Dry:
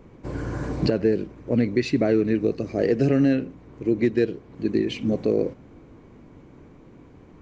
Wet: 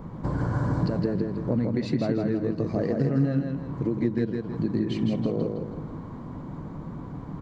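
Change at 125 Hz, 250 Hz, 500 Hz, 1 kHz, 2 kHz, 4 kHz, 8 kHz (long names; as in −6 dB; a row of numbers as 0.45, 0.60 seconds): +2.5 dB, −3.0 dB, −6.5 dB, +1.5 dB, −7.0 dB, −6.5 dB, can't be measured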